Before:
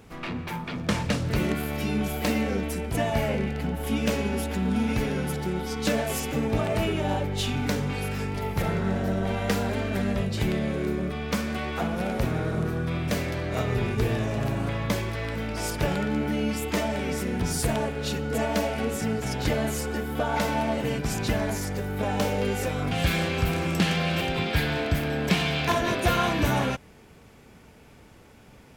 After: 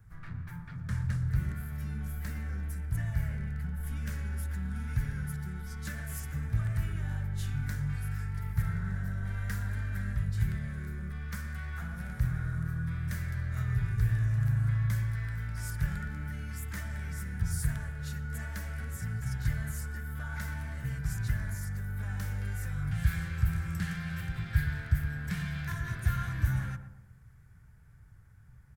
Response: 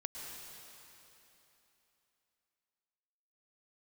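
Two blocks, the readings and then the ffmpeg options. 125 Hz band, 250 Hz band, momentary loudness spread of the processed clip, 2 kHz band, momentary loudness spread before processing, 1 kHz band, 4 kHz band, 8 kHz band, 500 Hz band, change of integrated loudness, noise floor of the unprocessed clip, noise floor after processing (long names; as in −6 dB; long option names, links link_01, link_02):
−1.5 dB, −14.0 dB, 8 LU, −9.5 dB, 5 LU, −18.0 dB, −19.5 dB, −11.0 dB, −27.0 dB, −7.0 dB, −51 dBFS, −54 dBFS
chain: -filter_complex "[0:a]highshelf=frequency=3500:gain=10,asplit=2[link_01][link_02];[link_02]adelay=118,lowpass=frequency=1100:poles=1,volume=-10dB,asplit=2[link_03][link_04];[link_04]adelay=118,lowpass=frequency=1100:poles=1,volume=0.5,asplit=2[link_05][link_06];[link_06]adelay=118,lowpass=frequency=1100:poles=1,volume=0.5,asplit=2[link_07][link_08];[link_08]adelay=118,lowpass=frequency=1100:poles=1,volume=0.5,asplit=2[link_09][link_10];[link_10]adelay=118,lowpass=frequency=1100:poles=1,volume=0.5[link_11];[link_01][link_03][link_05][link_07][link_09][link_11]amix=inputs=6:normalize=0,acrossover=split=430|1400[link_12][link_13][link_14];[link_13]asoftclip=type=tanh:threshold=-33dB[link_15];[link_14]dynaudnorm=framelen=370:gausssize=17:maxgain=6dB[link_16];[link_12][link_15][link_16]amix=inputs=3:normalize=0,firequalizer=gain_entry='entry(130,0);entry(230,-23);entry(480,-27);entry(1600,-9);entry(2600,-30);entry(10000,-22)':delay=0.05:min_phase=1"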